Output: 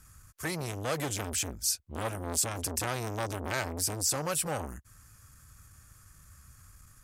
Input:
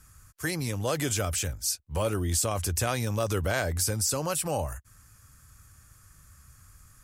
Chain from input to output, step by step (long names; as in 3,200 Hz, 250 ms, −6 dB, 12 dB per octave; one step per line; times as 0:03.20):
saturating transformer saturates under 1,700 Hz